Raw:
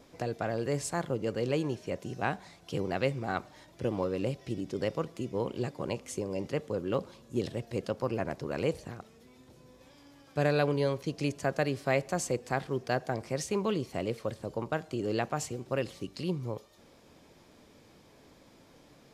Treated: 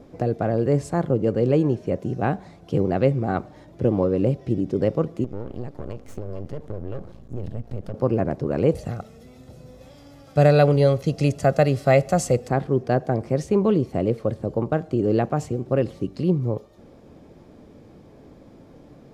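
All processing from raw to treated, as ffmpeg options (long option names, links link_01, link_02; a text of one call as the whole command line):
ffmpeg -i in.wav -filter_complex "[0:a]asettb=1/sr,asplit=3[link_01][link_02][link_03];[link_01]atrim=end=5.244[link_04];[link_02]atrim=start=5.24:end=7.94,asetpts=PTS-STARTPTS,afade=type=in:duration=0.004:curve=qsin,afade=type=out:start_time=2.696:duration=0.004:curve=qsin,asubboost=boost=6.5:cutoff=130,aeval=exprs='max(val(0),0)':channel_layout=same,acompressor=threshold=-39dB:ratio=3:attack=3.2:release=140:knee=1:detection=peak[link_05];[link_03]atrim=start=7.936[link_06];[link_04][link_05]acrossfade=duration=0.004:curve1=hsin:curve2=qsin[link_07];[link_07][link_06]acrossfade=duration=0.004:curve1=qsin:curve2=hsin,asettb=1/sr,asplit=3[link_08][link_09][link_10];[link_08]atrim=end=8.754[link_11];[link_09]atrim=start=8.75:end=12.48,asetpts=PTS-STARTPTS,afade=type=in:duration=0.004:curve=qsin,afade=type=out:start_time=3.726:duration=0.004:curve=qsin,highshelf=frequency=2200:gain=10.5,aecho=1:1:1.5:0.45,atrim=end_sample=164493[link_12];[link_10]atrim=start=12.476[link_13];[link_11][link_12]acrossfade=duration=0.004:curve1=hsin:curve2=qsin[link_14];[link_14][link_13]acrossfade=duration=0.004:curve1=qsin:curve2=hsin,tiltshelf=frequency=1200:gain=9,bandreject=frequency=960:width=14,volume=4dB" out.wav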